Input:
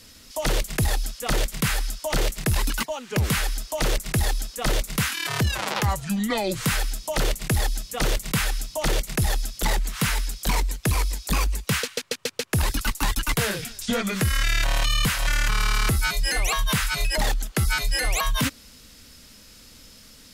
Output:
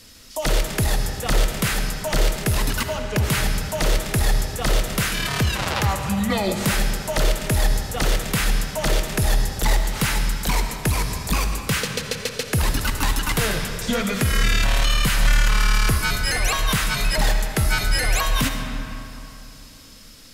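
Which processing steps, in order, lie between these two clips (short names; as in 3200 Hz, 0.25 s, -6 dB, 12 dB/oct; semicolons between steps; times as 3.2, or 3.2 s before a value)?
digital reverb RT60 3 s, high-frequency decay 0.6×, pre-delay 30 ms, DRR 4.5 dB; gain +1.5 dB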